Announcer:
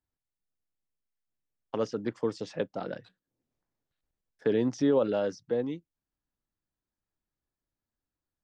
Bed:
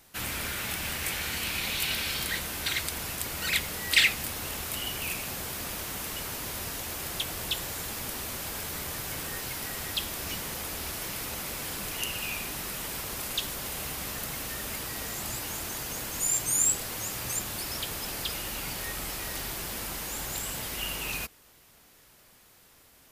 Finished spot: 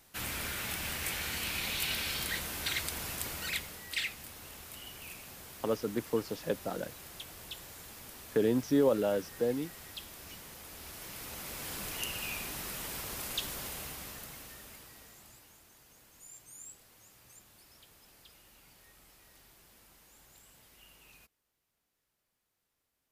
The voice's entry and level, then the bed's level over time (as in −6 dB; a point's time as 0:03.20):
3.90 s, −1.5 dB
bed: 0:03.28 −4 dB
0:03.89 −13.5 dB
0:10.61 −13.5 dB
0:11.77 −4.5 dB
0:13.60 −4.5 dB
0:15.64 −25 dB